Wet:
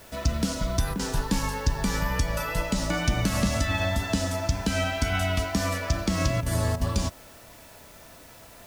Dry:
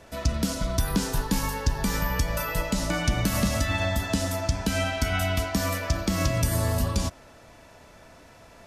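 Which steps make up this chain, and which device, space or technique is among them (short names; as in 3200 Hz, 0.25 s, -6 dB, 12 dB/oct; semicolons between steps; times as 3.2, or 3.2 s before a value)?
worn cassette (LPF 9600 Hz 12 dB/oct; wow and flutter 18 cents; level dips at 0.94/6.41/6.76, 51 ms -8 dB; white noise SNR 26 dB)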